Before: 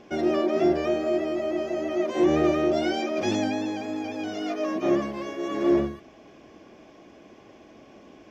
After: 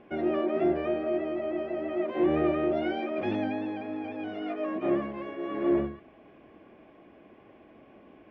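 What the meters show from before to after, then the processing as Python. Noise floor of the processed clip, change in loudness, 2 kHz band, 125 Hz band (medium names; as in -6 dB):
-56 dBFS, -4.0 dB, -4.5 dB, -4.0 dB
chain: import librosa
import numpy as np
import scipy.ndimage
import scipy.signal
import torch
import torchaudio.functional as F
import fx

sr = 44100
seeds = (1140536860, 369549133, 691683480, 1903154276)

y = scipy.signal.sosfilt(scipy.signal.butter(4, 2800.0, 'lowpass', fs=sr, output='sos'), x)
y = y * 10.0 ** (-4.0 / 20.0)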